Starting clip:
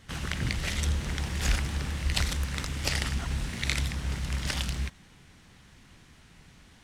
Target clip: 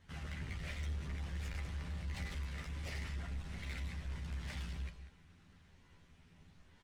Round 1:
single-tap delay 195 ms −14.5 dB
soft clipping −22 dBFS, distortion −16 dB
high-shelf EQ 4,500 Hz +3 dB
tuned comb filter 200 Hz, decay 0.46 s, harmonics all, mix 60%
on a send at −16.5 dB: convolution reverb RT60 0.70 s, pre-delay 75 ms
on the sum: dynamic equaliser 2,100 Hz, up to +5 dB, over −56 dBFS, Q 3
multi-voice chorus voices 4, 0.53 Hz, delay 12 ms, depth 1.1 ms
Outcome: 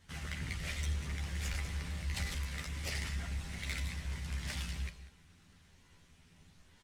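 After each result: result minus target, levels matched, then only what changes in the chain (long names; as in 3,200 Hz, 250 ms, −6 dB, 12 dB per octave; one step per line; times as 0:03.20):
8,000 Hz band +7.5 dB; soft clipping: distortion −7 dB
change: high-shelf EQ 4,500 Hz −9 dB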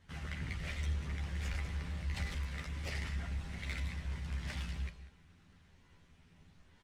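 soft clipping: distortion −7 dB
change: soft clipping −30 dBFS, distortion −9 dB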